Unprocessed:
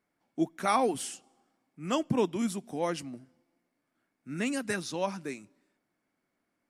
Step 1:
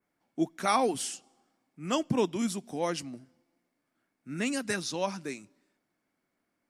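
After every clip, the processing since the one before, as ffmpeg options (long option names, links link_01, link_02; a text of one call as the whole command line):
ffmpeg -i in.wav -af "adynamicequalizer=threshold=0.00224:dfrequency=5200:dqfactor=0.9:tfrequency=5200:tqfactor=0.9:attack=5:release=100:ratio=0.375:range=2.5:mode=boostabove:tftype=bell" out.wav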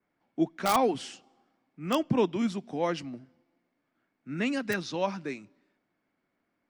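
ffmpeg -i in.wav -filter_complex "[0:a]lowpass=3600,acrossover=split=100|1200[link_01][link_02][link_03];[link_03]aeval=exprs='(mod(18.8*val(0)+1,2)-1)/18.8':channel_layout=same[link_04];[link_01][link_02][link_04]amix=inputs=3:normalize=0,volume=2dB" out.wav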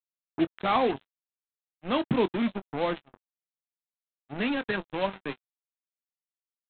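ffmpeg -i in.wav -filter_complex "[0:a]aresample=8000,acrusher=bits=4:mix=0:aa=0.5,aresample=44100,asplit=2[link_01][link_02];[link_02]adelay=21,volume=-13.5dB[link_03];[link_01][link_03]amix=inputs=2:normalize=0" out.wav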